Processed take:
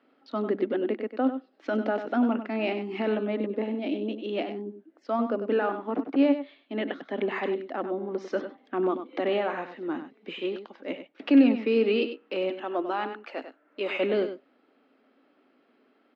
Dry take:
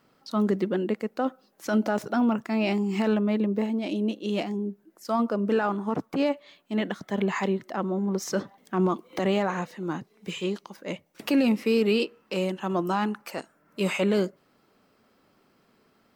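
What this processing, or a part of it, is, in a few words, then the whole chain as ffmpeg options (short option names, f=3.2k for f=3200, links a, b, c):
kitchen radio: -filter_complex "[0:a]asettb=1/sr,asplit=3[a][b][c];[a]atrim=end=12.504[d];[b]atrim=start=12.5:end=13.96,asetpts=PTS-STARTPTS,afade=t=in:d=0.004:c=qsin,afade=t=out:st=1.456:d=0.004:c=qsin,highpass=300[e];[c]atrim=start=13.956[f];[d][e]acrossfade=d=0.004:c1=hsin:c2=qsin[g];[g][f]acrossfade=d=0.004:c1=qsin:c2=hsin,highpass=f=200:w=0.5412,highpass=f=200:w=1.3066,highpass=170,equalizer=f=190:t=q:w=4:g=-9,equalizer=f=270:t=q:w=4:g=9,equalizer=f=1k:t=q:w=4:g=-6,lowpass=f=3.5k:w=0.5412,lowpass=f=3.5k:w=1.3066,equalizer=f=650:w=1.5:g=2,aecho=1:1:97:0.316,volume=-1.5dB"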